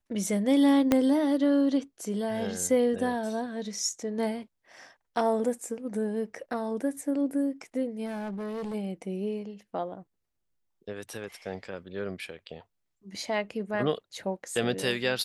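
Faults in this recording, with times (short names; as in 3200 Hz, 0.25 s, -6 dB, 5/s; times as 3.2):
0.92 pop -9 dBFS
8.05–8.75 clipped -32 dBFS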